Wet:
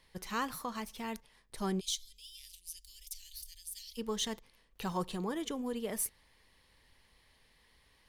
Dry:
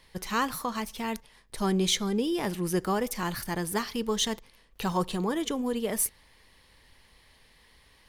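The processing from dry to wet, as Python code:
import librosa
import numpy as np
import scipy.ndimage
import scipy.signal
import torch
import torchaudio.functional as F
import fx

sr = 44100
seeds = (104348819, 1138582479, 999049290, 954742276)

y = fx.cheby2_bandstop(x, sr, low_hz=140.0, high_hz=1400.0, order=4, stop_db=50, at=(1.79, 3.97), fade=0.02)
y = y * librosa.db_to_amplitude(-7.5)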